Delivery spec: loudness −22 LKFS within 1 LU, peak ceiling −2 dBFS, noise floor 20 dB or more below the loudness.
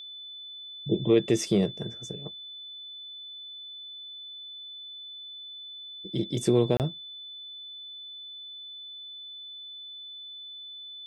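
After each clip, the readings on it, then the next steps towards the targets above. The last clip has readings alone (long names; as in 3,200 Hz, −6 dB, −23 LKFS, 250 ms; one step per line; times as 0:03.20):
number of dropouts 1; longest dropout 28 ms; interfering tone 3,500 Hz; level of the tone −40 dBFS; integrated loudness −32.5 LKFS; sample peak −10.5 dBFS; target loudness −22.0 LKFS
→ repair the gap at 0:06.77, 28 ms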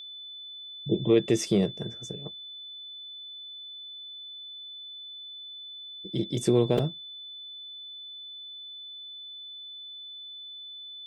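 number of dropouts 0; interfering tone 3,500 Hz; level of the tone −40 dBFS
→ notch filter 3,500 Hz, Q 30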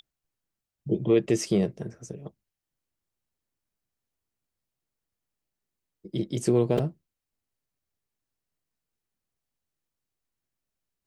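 interfering tone none found; integrated loudness −26.5 LKFS; sample peak −11.0 dBFS; target loudness −22.0 LKFS
→ level +4.5 dB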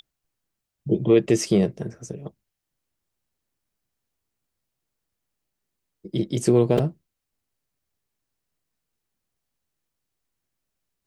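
integrated loudness −22.0 LKFS; sample peak −6.5 dBFS; background noise floor −83 dBFS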